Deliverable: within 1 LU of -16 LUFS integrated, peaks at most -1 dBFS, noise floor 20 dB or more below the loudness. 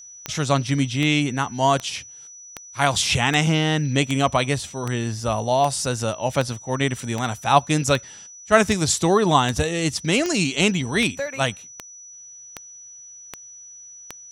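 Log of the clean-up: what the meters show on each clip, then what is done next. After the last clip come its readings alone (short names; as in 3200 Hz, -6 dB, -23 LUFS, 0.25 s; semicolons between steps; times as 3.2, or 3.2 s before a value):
clicks 19; steady tone 5900 Hz; tone level -40 dBFS; loudness -21.5 LUFS; peak -1.5 dBFS; loudness target -16.0 LUFS
-> de-click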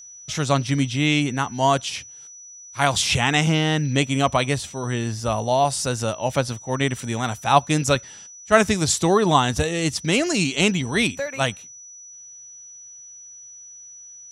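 clicks 0; steady tone 5900 Hz; tone level -40 dBFS
-> notch 5900 Hz, Q 30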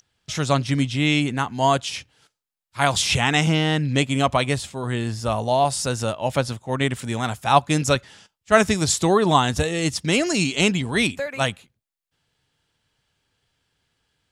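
steady tone none; loudness -21.5 LUFS; peak -1.5 dBFS; loudness target -16.0 LUFS
-> gain +5.5 dB; limiter -1 dBFS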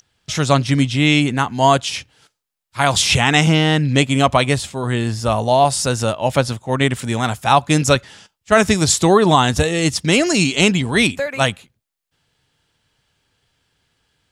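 loudness -16.0 LUFS; peak -1.0 dBFS; noise floor -78 dBFS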